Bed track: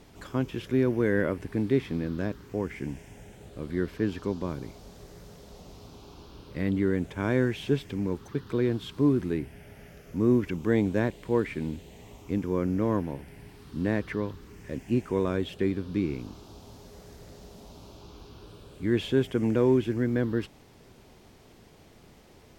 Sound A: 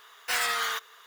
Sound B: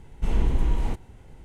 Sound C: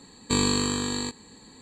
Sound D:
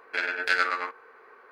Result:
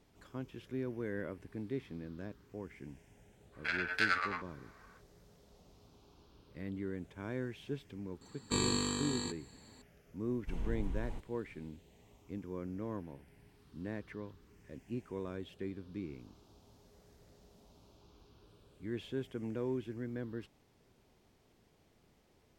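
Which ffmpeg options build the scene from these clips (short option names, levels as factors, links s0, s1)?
-filter_complex "[0:a]volume=0.188[s0];[4:a]equalizer=f=380:t=o:w=1.4:g=-9,atrim=end=1.51,asetpts=PTS-STARTPTS,volume=0.473,afade=t=in:d=0.05,afade=t=out:st=1.46:d=0.05,adelay=3510[s1];[3:a]atrim=end=1.61,asetpts=PTS-STARTPTS,volume=0.355,afade=t=in:d=0.004:c=hsin,afade=t=out:st=1.606:d=0.004:c=hsin,adelay=8210[s2];[2:a]atrim=end=1.44,asetpts=PTS-STARTPTS,volume=0.158,afade=t=in:d=0.004:c=hsin,afade=t=out:st=1.436:d=0.004:c=hsin,adelay=10250[s3];[s0][s1][s2][s3]amix=inputs=4:normalize=0"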